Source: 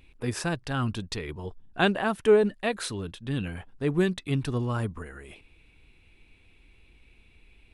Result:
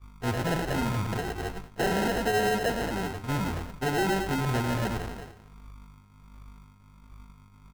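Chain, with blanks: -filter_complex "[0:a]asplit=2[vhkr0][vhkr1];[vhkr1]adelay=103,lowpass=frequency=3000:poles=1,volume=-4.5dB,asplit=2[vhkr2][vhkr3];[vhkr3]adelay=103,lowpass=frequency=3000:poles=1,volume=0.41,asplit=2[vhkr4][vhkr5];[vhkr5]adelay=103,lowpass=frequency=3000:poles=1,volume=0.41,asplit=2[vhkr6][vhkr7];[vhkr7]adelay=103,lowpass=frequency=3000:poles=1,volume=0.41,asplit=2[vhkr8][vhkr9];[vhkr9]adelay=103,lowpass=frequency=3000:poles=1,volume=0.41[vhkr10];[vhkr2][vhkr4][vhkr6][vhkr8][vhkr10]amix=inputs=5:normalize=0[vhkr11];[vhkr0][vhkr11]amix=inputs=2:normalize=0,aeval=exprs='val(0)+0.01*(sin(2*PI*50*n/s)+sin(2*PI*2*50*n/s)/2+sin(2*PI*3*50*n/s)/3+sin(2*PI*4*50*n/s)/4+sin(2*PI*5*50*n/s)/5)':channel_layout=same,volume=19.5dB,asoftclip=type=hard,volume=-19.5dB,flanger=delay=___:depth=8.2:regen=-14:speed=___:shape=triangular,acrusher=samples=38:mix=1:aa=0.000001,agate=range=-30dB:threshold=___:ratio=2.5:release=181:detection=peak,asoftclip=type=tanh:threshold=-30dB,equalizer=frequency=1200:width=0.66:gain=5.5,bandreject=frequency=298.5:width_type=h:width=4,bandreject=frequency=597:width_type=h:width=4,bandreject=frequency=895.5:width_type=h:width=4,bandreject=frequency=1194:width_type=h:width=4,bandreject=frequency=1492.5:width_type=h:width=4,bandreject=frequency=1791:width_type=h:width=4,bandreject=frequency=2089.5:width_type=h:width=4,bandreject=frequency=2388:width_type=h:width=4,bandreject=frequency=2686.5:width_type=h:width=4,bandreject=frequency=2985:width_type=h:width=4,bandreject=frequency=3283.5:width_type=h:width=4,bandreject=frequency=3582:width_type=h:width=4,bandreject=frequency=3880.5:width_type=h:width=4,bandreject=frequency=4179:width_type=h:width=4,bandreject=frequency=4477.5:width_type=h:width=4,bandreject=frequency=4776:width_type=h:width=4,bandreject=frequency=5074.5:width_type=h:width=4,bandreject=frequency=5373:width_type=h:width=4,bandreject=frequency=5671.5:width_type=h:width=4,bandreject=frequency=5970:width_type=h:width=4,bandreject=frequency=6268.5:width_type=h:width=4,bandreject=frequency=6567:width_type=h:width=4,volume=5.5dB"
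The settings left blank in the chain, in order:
1.8, 1.4, -35dB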